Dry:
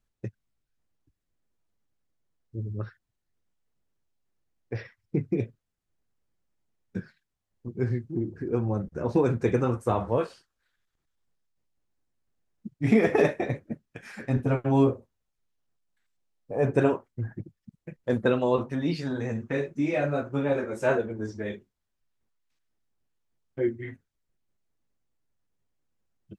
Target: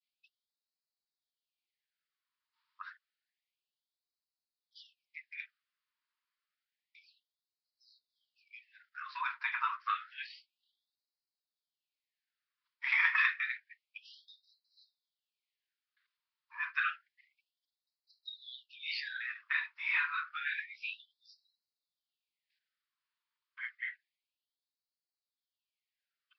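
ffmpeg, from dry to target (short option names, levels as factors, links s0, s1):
-af "adynamicequalizer=threshold=0.00398:dfrequency=2100:dqfactor=1.2:tfrequency=2100:tqfactor=1.2:attack=5:release=100:ratio=0.375:range=2:mode=boostabove:tftype=bell,aresample=11025,aresample=44100,afftfilt=real='re*gte(b*sr/1024,870*pow(3900/870,0.5+0.5*sin(2*PI*0.29*pts/sr)))':imag='im*gte(b*sr/1024,870*pow(3900/870,0.5+0.5*sin(2*PI*0.29*pts/sr)))':win_size=1024:overlap=0.75,volume=1.26"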